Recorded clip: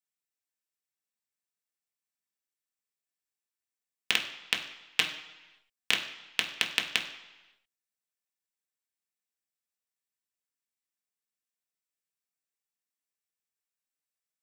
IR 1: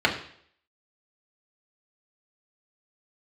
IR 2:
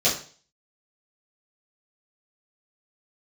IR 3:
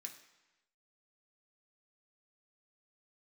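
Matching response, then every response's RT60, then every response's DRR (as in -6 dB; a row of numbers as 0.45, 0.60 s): 3; 0.60, 0.40, 1.1 s; -2.0, -11.5, 1.0 dB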